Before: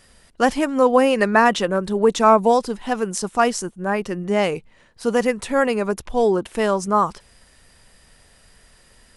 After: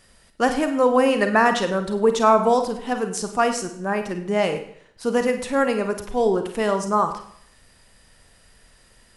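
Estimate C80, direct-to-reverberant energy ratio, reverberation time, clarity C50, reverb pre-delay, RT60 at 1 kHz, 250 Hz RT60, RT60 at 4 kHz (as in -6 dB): 12.0 dB, 7.0 dB, 0.60 s, 9.0 dB, 35 ms, 0.60 s, 0.65 s, 0.60 s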